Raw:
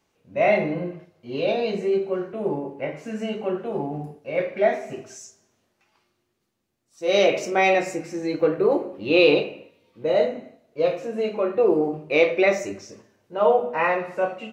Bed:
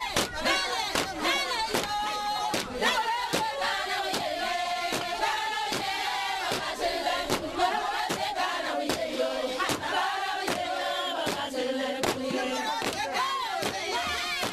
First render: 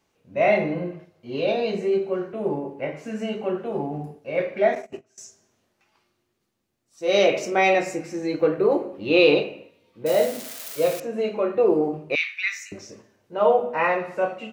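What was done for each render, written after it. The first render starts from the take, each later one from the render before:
0:04.75–0:05.18: noise gate −34 dBFS, range −22 dB
0:10.06–0:11.00: spike at every zero crossing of −22 dBFS
0:12.15–0:12.72: Butterworth high-pass 1,600 Hz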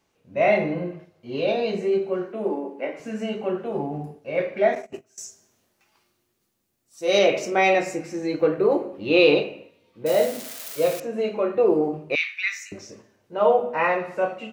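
0:02.25–0:03.00: linear-phase brick-wall high-pass 180 Hz
0:04.94–0:07.19: high-shelf EQ 7,500 Hz +12 dB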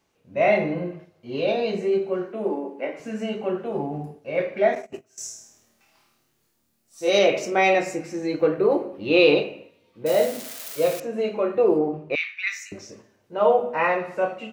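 0:05.08–0:07.10: flutter between parallel walls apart 4.5 metres, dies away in 0.66 s
0:08.50–0:09.40: notch filter 7,100 Hz, Q 9.3
0:11.78–0:12.47: high-shelf EQ 4,700 Hz −12 dB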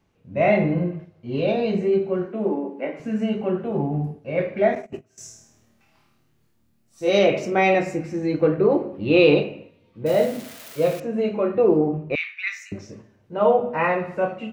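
bass and treble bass +11 dB, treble −7 dB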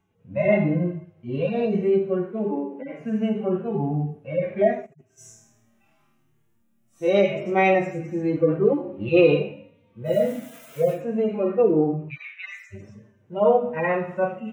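harmonic-percussive split with one part muted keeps harmonic
parametric band 4,500 Hz −12.5 dB 0.43 octaves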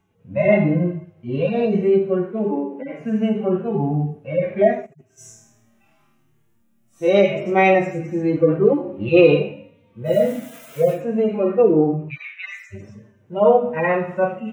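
level +4 dB

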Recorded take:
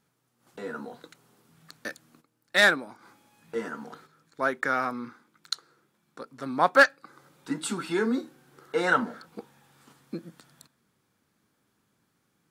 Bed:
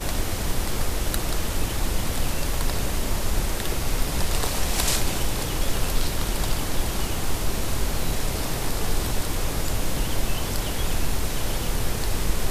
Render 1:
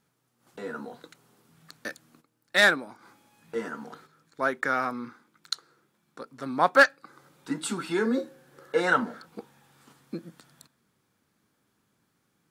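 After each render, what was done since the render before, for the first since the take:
0:08.05–0:08.80: hollow resonant body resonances 540/1,700 Hz, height 15 dB, ringing for 100 ms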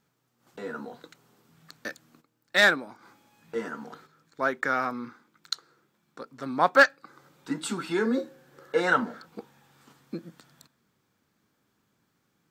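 parametric band 10,000 Hz −12 dB 0.2 octaves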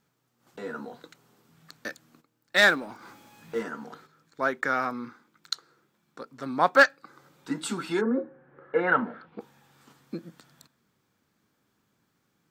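0:02.56–0:03.63: mu-law and A-law mismatch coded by mu
0:08.00–0:09.39: low-pass filter 1,400 Hz → 3,400 Hz 24 dB per octave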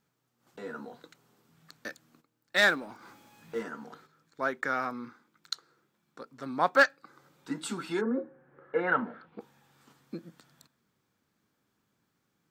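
level −4 dB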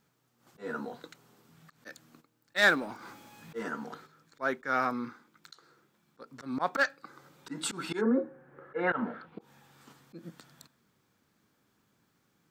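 volume swells 134 ms
in parallel at −3 dB: brickwall limiter −24.5 dBFS, peak gain reduction 10 dB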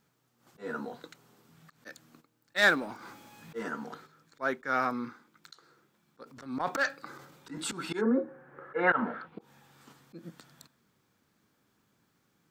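0:06.24–0:07.73: transient designer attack −4 dB, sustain +8 dB
0:08.28–0:09.28: parametric band 1,300 Hz +5.5 dB 2.3 octaves

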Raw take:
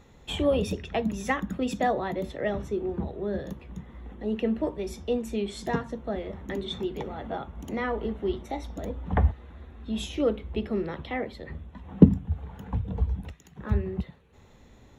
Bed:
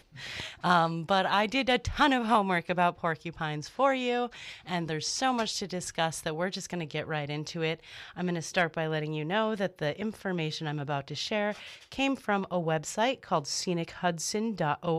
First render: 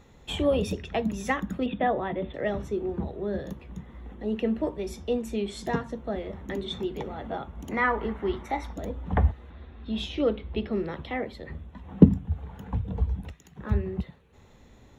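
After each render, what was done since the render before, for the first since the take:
0:01.66–0:02.34: Butterworth low-pass 3,600 Hz 96 dB per octave
0:07.71–0:08.73: flat-topped bell 1,400 Hz +9 dB
0:09.50–0:10.73: high shelf with overshoot 6,000 Hz −11.5 dB, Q 1.5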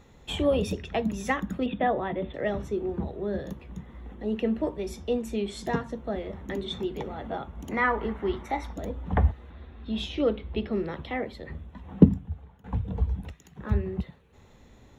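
0:11.95–0:12.64: fade out, to −20 dB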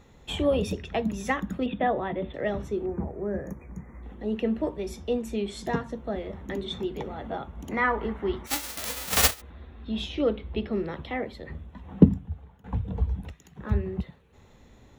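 0:02.86–0:04.03: linear-phase brick-wall band-stop 2,500–5,600 Hz
0:08.46–0:09.40: spectral envelope flattened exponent 0.1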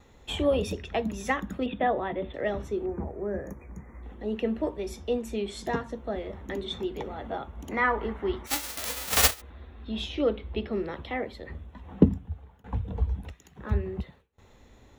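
noise gate with hold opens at −46 dBFS
parametric band 160 Hz −6 dB 0.91 octaves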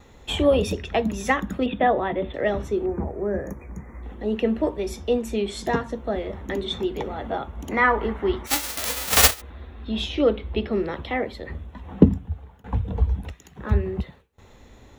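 level +6 dB
brickwall limiter −1 dBFS, peak gain reduction 1.5 dB

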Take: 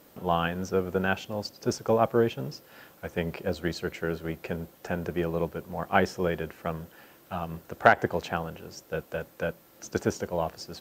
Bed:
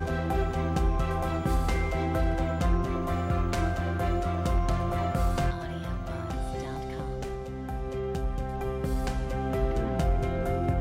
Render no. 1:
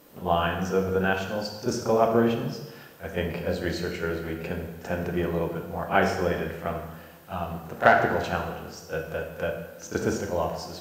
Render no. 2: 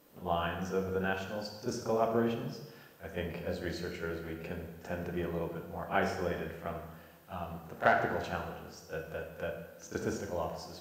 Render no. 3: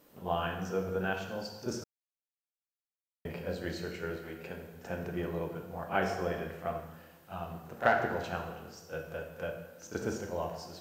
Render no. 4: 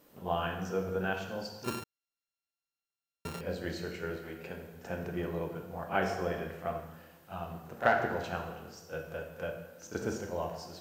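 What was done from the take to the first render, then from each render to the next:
backwards echo 34 ms −11 dB; dense smooth reverb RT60 1.1 s, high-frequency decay 0.85×, DRR 2 dB
level −8.5 dB
0:01.84–0:03.25: silence; 0:04.16–0:04.74: low-shelf EQ 260 Hz −7 dB; 0:06.10–0:06.80: hollow resonant body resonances 700/1,100 Hz, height 8 dB
0:01.64–0:03.41: samples sorted by size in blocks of 32 samples

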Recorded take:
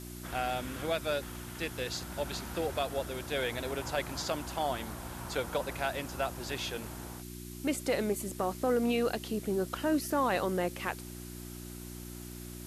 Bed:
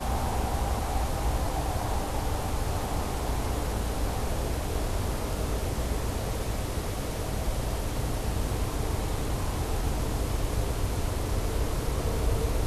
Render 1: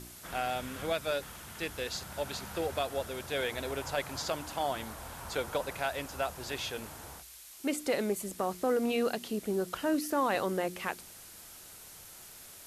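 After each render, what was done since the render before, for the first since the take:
hum removal 60 Hz, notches 6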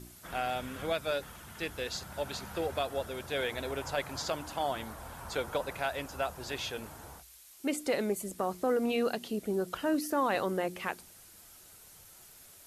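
broadband denoise 6 dB, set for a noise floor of −51 dBFS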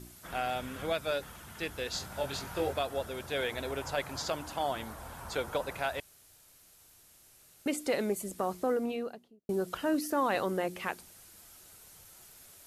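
0:01.91–0:02.73: double-tracking delay 22 ms −3 dB
0:06.00–0:07.66: fill with room tone
0:08.51–0:09.49: fade out and dull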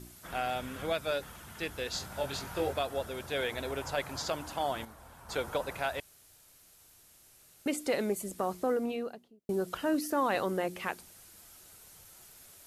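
0:04.85–0:05.29: clip gain −8 dB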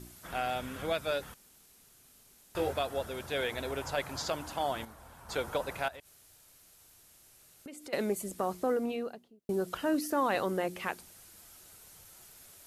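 0:01.34–0:02.55: fill with room tone
0:05.88–0:07.93: downward compressor 5 to 1, threshold −45 dBFS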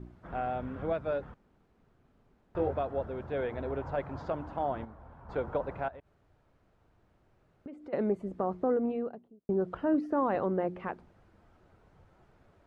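low-pass filter 1,200 Hz 12 dB per octave
low-shelf EQ 380 Hz +4.5 dB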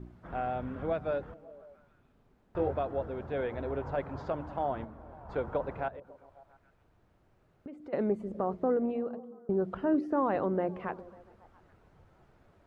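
echo through a band-pass that steps 137 ms, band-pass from 160 Hz, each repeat 0.7 octaves, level −12 dB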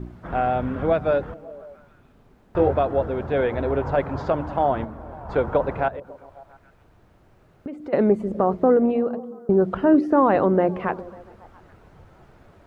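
level +11.5 dB

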